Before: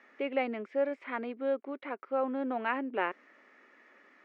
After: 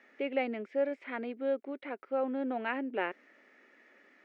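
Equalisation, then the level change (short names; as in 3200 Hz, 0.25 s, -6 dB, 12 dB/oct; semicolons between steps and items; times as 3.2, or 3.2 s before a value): bell 1100 Hz -8 dB 0.59 oct; 0.0 dB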